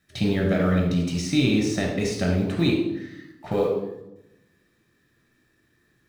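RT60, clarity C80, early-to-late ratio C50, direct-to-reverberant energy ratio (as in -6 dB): 0.90 s, 6.0 dB, 2.5 dB, -1.0 dB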